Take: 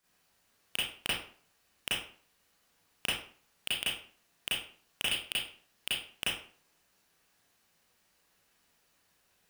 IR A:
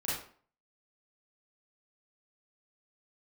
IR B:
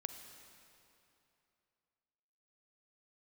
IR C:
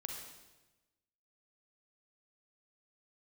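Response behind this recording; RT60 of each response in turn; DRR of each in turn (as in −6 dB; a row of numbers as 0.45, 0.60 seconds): A; 0.50, 2.9, 1.1 seconds; −9.5, 7.0, 1.0 decibels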